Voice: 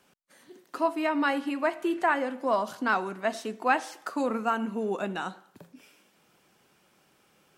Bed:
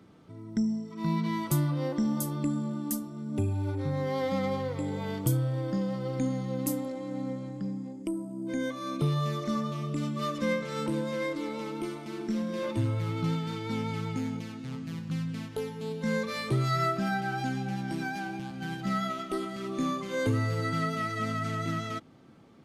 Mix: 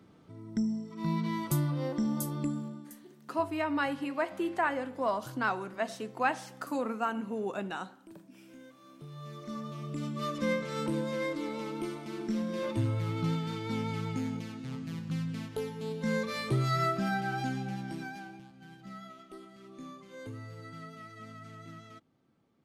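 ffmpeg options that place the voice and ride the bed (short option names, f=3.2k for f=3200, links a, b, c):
-filter_complex "[0:a]adelay=2550,volume=-4.5dB[a];[1:a]volume=16.5dB,afade=t=out:st=2.43:d=0.51:silence=0.125893,afade=t=in:st=9.08:d=1.4:silence=0.112202,afade=t=out:st=17.4:d=1.12:silence=0.188365[b];[a][b]amix=inputs=2:normalize=0"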